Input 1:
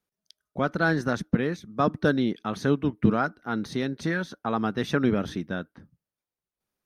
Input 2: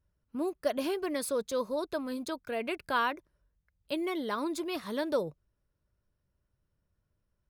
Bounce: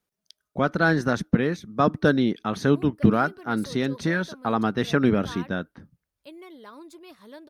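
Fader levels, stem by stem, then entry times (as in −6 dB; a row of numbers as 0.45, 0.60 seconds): +3.0, −11.5 decibels; 0.00, 2.35 seconds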